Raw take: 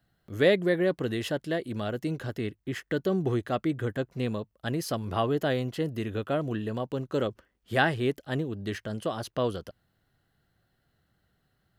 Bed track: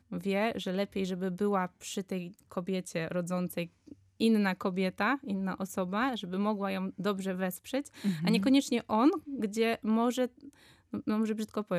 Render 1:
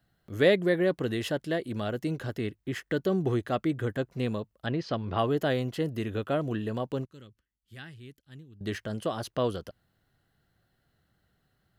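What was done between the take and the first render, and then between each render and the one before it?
0:04.66–0:05.19: low-pass filter 4,400 Hz 24 dB per octave
0:07.05–0:08.61: guitar amp tone stack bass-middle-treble 6-0-2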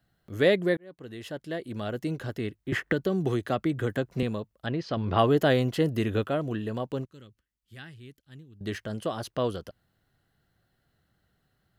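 0:00.77–0:02.00: fade in linear
0:02.72–0:04.23: multiband upward and downward compressor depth 100%
0:04.97–0:06.28: clip gain +5 dB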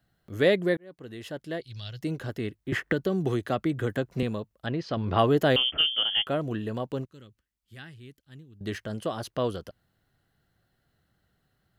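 0:01.61–0:02.01: drawn EQ curve 140 Hz 0 dB, 240 Hz −24 dB, 1,300 Hz −14 dB, 2,300 Hz −4 dB, 5,300 Hz +14 dB, 7,700 Hz −10 dB
0:05.56–0:06.27: voice inversion scrambler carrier 3,300 Hz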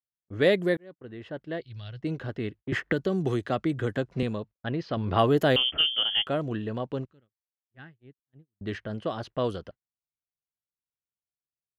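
noise gate −44 dBFS, range −37 dB
low-pass that shuts in the quiet parts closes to 1,500 Hz, open at −21 dBFS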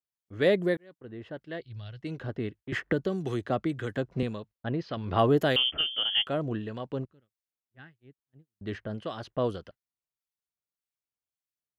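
two-band tremolo in antiphase 1.7 Hz, depth 50%, crossover 1,300 Hz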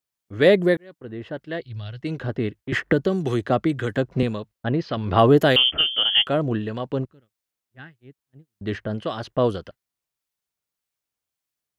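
level +8 dB
brickwall limiter −3 dBFS, peak gain reduction 1 dB

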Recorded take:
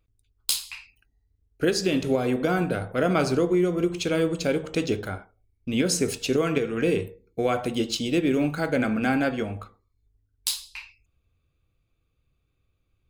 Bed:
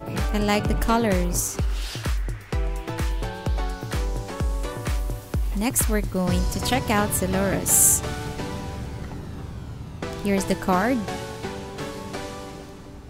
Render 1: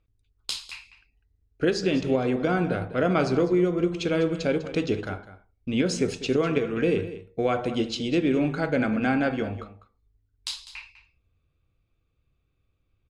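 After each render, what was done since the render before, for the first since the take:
high-frequency loss of the air 100 metres
single-tap delay 200 ms −14.5 dB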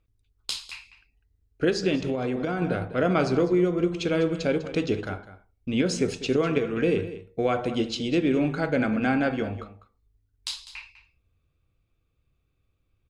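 0:01.95–0:02.62: downward compressor, threshold −23 dBFS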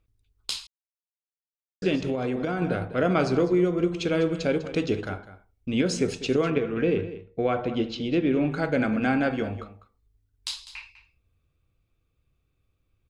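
0:00.67–0:01.82: silence
0:06.50–0:08.52: high-frequency loss of the air 160 metres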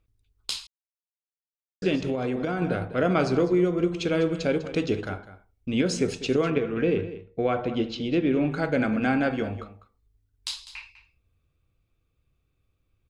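no processing that can be heard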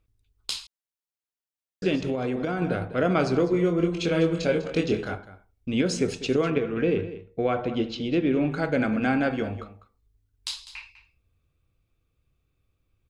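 0:03.51–0:05.15: double-tracking delay 24 ms −4 dB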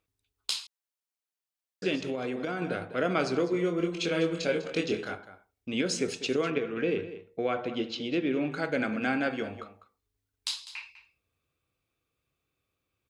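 high-pass filter 420 Hz 6 dB per octave
dynamic equaliser 830 Hz, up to −4 dB, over −39 dBFS, Q 0.89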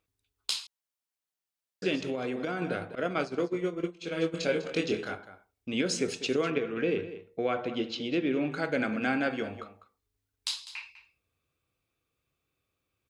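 0:02.95–0:04.34: downward expander −24 dBFS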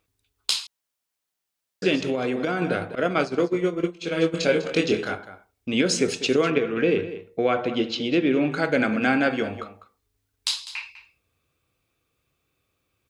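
level +7.5 dB

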